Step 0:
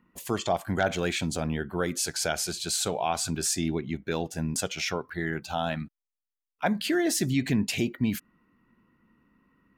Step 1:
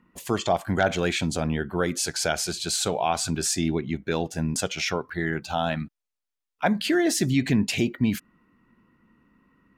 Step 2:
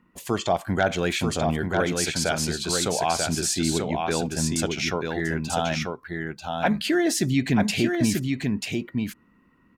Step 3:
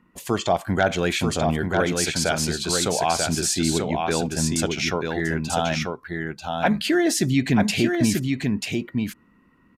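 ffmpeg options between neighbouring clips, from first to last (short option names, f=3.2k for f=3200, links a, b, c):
-af "highshelf=f=12k:g=-9,volume=3.5dB"
-af "aecho=1:1:939:0.631"
-af "aresample=32000,aresample=44100,volume=2dB"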